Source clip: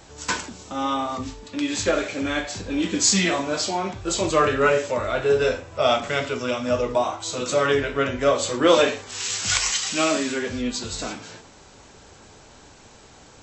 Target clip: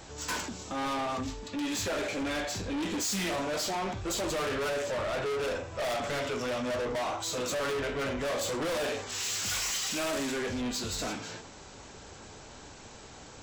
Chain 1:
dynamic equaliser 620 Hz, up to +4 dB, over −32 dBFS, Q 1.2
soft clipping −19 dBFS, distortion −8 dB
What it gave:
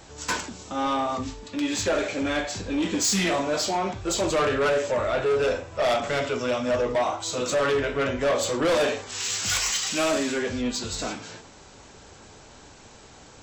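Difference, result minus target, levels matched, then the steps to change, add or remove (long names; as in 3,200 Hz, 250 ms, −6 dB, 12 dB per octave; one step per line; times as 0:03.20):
soft clipping: distortion −6 dB
change: soft clipping −30 dBFS, distortion −2 dB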